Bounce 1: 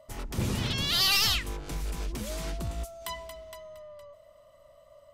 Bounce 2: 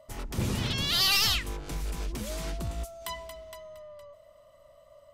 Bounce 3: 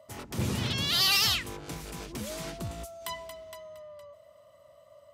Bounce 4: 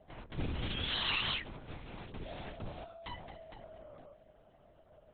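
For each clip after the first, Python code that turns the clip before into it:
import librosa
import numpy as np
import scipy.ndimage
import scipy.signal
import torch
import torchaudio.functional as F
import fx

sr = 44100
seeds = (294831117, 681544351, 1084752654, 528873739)

y1 = x
y2 = scipy.signal.sosfilt(scipy.signal.butter(4, 76.0, 'highpass', fs=sr, output='sos'), y1)
y3 = fx.lpc_vocoder(y2, sr, seeds[0], excitation='whisper', order=8)
y3 = F.gain(torch.from_numpy(y3), -6.0).numpy()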